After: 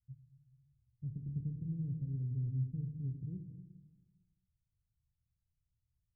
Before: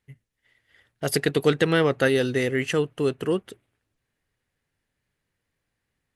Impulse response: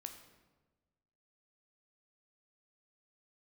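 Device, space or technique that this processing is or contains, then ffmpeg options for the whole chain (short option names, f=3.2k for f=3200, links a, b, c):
club heard from the street: -filter_complex "[0:a]alimiter=limit=-12.5dB:level=0:latency=1,lowpass=f=130:w=0.5412,lowpass=f=130:w=1.3066[a];[1:a]atrim=start_sample=2205[b];[a][b]afir=irnorm=-1:irlink=0,volume=4.5dB"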